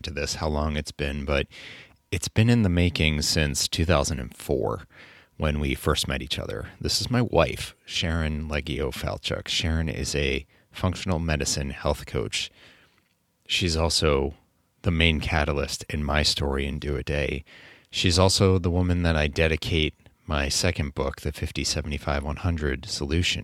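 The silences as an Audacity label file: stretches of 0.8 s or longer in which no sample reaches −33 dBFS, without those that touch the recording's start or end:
12.460000	13.500000	silence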